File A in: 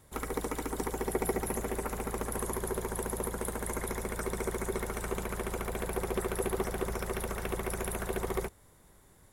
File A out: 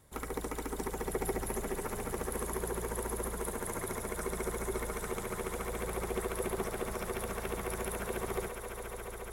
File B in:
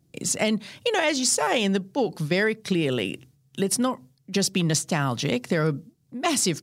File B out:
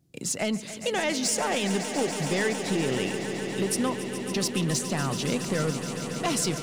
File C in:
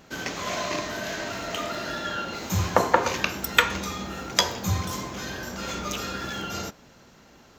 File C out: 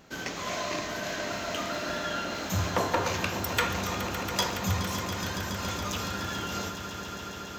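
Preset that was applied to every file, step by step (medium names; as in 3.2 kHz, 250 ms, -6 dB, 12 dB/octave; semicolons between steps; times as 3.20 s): saturation -15.5 dBFS; echo with a slow build-up 140 ms, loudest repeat 5, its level -12.5 dB; trim -3 dB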